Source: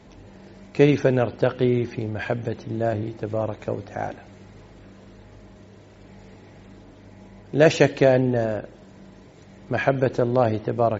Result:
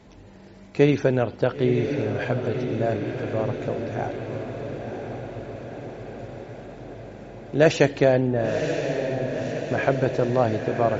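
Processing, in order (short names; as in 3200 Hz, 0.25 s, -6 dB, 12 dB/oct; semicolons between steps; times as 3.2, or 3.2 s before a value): 8.27–9.83 LPF 2500 Hz; diffused feedback echo 1.004 s, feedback 66%, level -6.5 dB; gain -1.5 dB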